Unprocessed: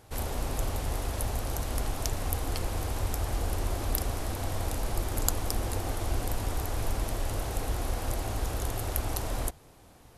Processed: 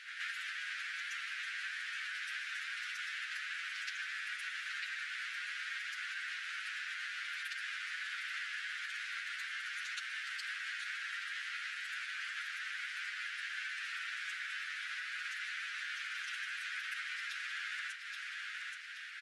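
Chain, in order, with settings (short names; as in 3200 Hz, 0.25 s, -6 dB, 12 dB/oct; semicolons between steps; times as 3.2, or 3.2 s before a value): spectral limiter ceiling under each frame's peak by 22 dB; LPF 2000 Hz 12 dB/oct; time stretch by phase-locked vocoder 1.7×; feedback echo 0.743 s, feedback 29%, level -13.5 dB; vocal rider within 4 dB 0.5 s; varispeed -10%; steep high-pass 1500 Hz 72 dB/oct; compressor 4:1, threshold -55 dBFS, peak gain reduction 14 dB; reverse echo 0.124 s -8 dB; gain +13.5 dB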